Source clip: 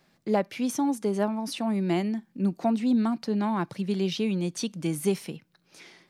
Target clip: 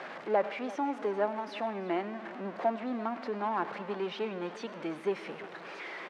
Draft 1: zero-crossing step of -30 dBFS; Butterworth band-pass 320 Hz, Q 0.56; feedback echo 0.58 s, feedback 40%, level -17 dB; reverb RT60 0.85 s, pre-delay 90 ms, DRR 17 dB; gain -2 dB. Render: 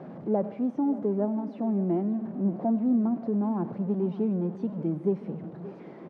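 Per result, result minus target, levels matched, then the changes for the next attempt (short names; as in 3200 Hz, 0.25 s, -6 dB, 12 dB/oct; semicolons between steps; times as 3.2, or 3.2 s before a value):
echo 0.24 s late; 1000 Hz band -11.5 dB
change: feedback echo 0.34 s, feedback 40%, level -17 dB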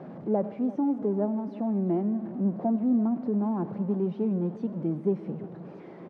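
1000 Hz band -11.5 dB
change: Butterworth band-pass 940 Hz, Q 0.56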